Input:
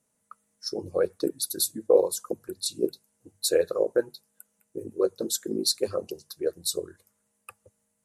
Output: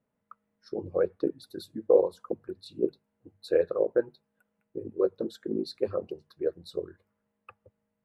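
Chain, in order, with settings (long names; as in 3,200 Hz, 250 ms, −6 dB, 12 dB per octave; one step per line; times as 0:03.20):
high-frequency loss of the air 470 metres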